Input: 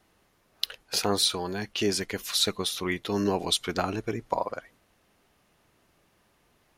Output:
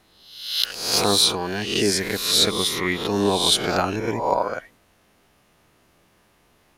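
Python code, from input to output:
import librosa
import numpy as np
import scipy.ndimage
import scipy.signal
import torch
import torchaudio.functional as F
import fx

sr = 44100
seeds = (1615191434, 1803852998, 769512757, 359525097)

y = fx.spec_swells(x, sr, rise_s=0.73)
y = y * 10.0 ** (4.0 / 20.0)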